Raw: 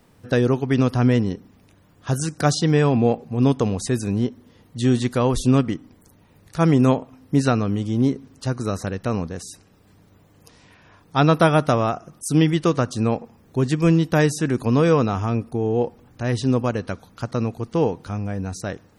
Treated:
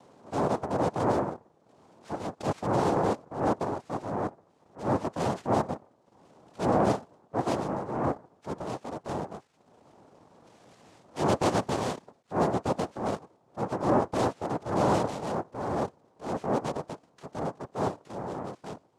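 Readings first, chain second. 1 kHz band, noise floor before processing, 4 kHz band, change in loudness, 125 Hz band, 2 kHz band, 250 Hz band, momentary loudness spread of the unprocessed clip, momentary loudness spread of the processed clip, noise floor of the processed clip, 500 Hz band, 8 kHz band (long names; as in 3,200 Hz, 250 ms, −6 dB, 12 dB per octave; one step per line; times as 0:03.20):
−2.5 dB, −55 dBFS, −11.0 dB, −9.0 dB, −14.5 dB, −10.5 dB, −11.5 dB, 12 LU, 13 LU, −66 dBFS, −7.0 dB, −12.0 dB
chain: gap after every zero crossing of 0.063 ms
upward compression, threshold −38 dBFS
cochlear-implant simulation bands 2
high-shelf EQ 2,400 Hz −11 dB
transient designer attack −9 dB, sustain −5 dB
level −6 dB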